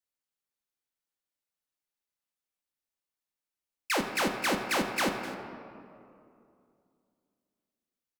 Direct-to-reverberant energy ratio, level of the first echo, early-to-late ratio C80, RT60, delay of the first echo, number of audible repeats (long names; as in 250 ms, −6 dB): 3.0 dB, −16.0 dB, 7.0 dB, 2.6 s, 254 ms, 1